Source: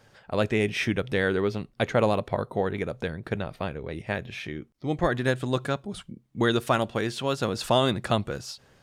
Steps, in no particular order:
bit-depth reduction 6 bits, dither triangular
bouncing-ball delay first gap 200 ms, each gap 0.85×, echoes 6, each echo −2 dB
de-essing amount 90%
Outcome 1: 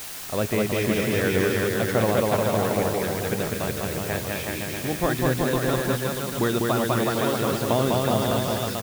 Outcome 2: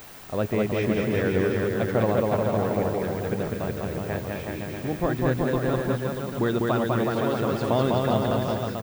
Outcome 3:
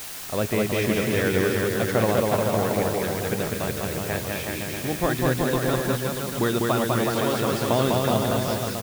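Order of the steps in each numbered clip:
bouncing-ball delay, then de-essing, then bit-depth reduction
bouncing-ball delay, then bit-depth reduction, then de-essing
de-essing, then bouncing-ball delay, then bit-depth reduction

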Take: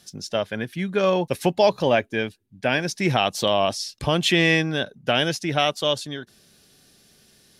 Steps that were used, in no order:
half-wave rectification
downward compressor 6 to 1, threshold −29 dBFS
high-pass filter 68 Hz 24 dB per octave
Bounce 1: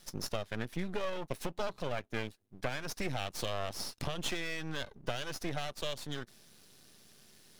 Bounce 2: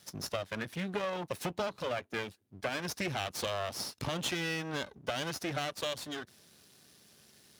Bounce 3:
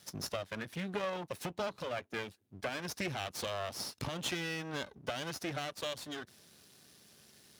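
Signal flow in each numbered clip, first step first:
downward compressor, then high-pass filter, then half-wave rectification
half-wave rectification, then downward compressor, then high-pass filter
downward compressor, then half-wave rectification, then high-pass filter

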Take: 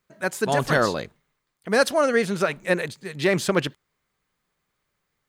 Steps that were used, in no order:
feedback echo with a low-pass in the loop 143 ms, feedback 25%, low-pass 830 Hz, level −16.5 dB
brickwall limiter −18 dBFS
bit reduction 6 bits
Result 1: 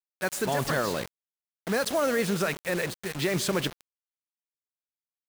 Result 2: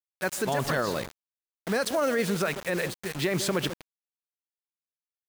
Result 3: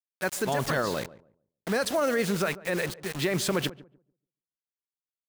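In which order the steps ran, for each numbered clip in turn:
brickwall limiter, then feedback echo with a low-pass in the loop, then bit reduction
feedback echo with a low-pass in the loop, then bit reduction, then brickwall limiter
bit reduction, then brickwall limiter, then feedback echo with a low-pass in the loop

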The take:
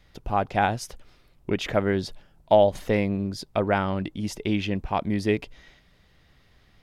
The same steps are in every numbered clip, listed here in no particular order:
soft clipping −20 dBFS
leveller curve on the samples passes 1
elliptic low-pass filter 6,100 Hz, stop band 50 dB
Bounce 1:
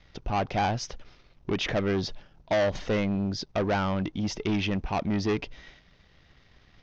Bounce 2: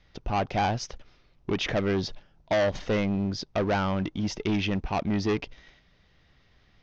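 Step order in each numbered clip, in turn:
soft clipping, then leveller curve on the samples, then elliptic low-pass filter
leveller curve on the samples, then soft clipping, then elliptic low-pass filter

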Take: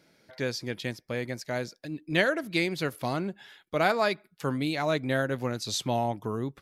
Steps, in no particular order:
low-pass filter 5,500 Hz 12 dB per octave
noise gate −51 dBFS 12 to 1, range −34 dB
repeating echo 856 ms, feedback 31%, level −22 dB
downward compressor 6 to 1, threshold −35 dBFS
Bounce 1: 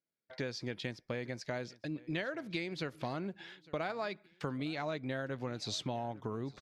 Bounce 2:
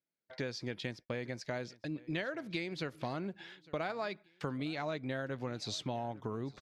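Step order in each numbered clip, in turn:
low-pass filter, then noise gate, then downward compressor, then repeating echo
downward compressor, then low-pass filter, then noise gate, then repeating echo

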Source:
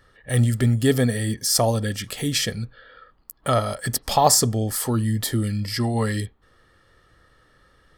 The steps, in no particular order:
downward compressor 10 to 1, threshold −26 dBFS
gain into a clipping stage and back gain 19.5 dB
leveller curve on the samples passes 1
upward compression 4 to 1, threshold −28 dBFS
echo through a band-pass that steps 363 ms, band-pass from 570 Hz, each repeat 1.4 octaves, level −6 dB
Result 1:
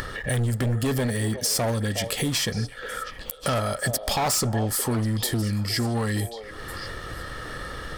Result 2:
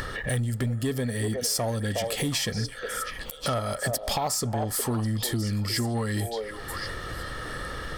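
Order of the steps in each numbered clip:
gain into a clipping stage and back, then downward compressor, then upward compression, then leveller curve on the samples, then echo through a band-pass that steps
upward compression, then echo through a band-pass that steps, then downward compressor, then gain into a clipping stage and back, then leveller curve on the samples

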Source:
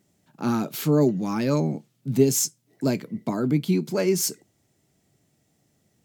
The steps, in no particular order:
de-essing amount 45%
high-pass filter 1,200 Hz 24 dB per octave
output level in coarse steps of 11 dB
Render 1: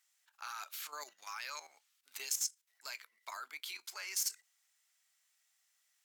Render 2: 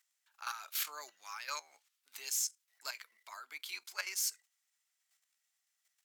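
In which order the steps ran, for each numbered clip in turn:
high-pass filter, then de-essing, then output level in coarse steps
output level in coarse steps, then high-pass filter, then de-essing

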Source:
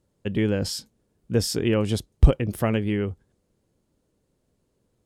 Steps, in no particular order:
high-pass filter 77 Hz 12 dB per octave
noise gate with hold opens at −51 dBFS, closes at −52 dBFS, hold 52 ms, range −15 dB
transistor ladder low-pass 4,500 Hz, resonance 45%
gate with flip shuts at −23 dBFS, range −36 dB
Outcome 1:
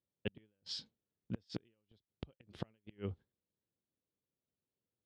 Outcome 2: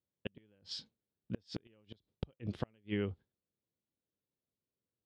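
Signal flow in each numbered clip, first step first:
transistor ladder low-pass, then gate with flip, then high-pass filter, then noise gate with hold
transistor ladder low-pass, then noise gate with hold, then high-pass filter, then gate with flip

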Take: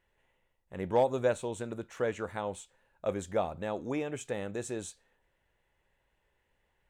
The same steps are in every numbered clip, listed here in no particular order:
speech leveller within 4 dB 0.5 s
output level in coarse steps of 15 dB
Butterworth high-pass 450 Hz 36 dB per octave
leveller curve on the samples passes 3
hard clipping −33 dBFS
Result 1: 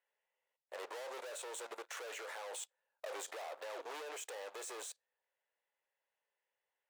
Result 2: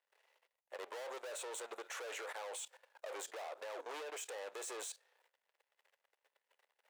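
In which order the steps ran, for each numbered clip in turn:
leveller curve on the samples, then hard clipping, then Butterworth high-pass, then output level in coarse steps, then speech leveller
hard clipping, then leveller curve on the samples, then Butterworth high-pass, then speech leveller, then output level in coarse steps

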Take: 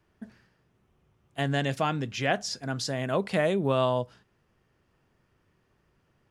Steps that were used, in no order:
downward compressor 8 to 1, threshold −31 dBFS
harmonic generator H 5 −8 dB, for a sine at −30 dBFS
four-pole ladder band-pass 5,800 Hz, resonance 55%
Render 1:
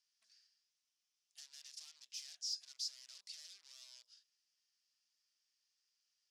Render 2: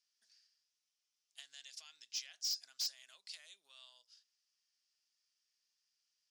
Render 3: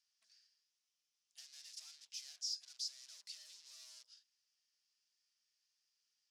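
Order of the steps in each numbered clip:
downward compressor, then harmonic generator, then four-pole ladder band-pass
downward compressor, then four-pole ladder band-pass, then harmonic generator
harmonic generator, then downward compressor, then four-pole ladder band-pass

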